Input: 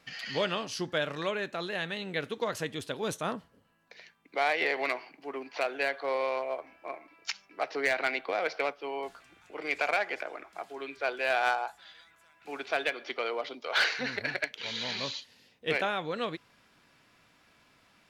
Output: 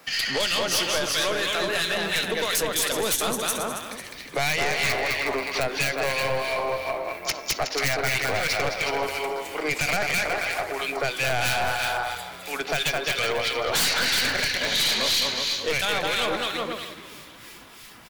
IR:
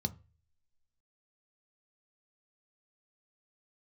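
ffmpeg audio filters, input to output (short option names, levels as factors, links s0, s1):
-filter_complex "[0:a]aemphasis=mode=production:type=bsi,asplit=2[s0][s1];[s1]aecho=0:1:210|367.5|485.6|574.2|640.7:0.631|0.398|0.251|0.158|0.1[s2];[s0][s2]amix=inputs=2:normalize=0,acrossover=split=1600[s3][s4];[s3]aeval=exprs='val(0)*(1-0.7/2+0.7/2*cos(2*PI*3*n/s))':c=same[s5];[s4]aeval=exprs='val(0)*(1-0.7/2-0.7/2*cos(2*PI*3*n/s))':c=same[s6];[s5][s6]amix=inputs=2:normalize=0,aeval=exprs='(tanh(14.1*val(0)+0.5)-tanh(0.5))/14.1':c=same,acrossover=split=150|3000[s7][s8][s9];[s8]acompressor=threshold=0.0112:ratio=6[s10];[s7][s10][s9]amix=inputs=3:normalize=0,asplit=2[s11][s12];[s12]asplit=5[s13][s14][s15][s16][s17];[s13]adelay=431,afreqshift=-90,volume=0.0891[s18];[s14]adelay=862,afreqshift=-180,volume=0.055[s19];[s15]adelay=1293,afreqshift=-270,volume=0.0343[s20];[s16]adelay=1724,afreqshift=-360,volume=0.0211[s21];[s17]adelay=2155,afreqshift=-450,volume=0.0132[s22];[s18][s19][s20][s21][s22]amix=inputs=5:normalize=0[s23];[s11][s23]amix=inputs=2:normalize=0,aeval=exprs='0.119*sin(PI/2*4.47*val(0)/0.119)':c=same"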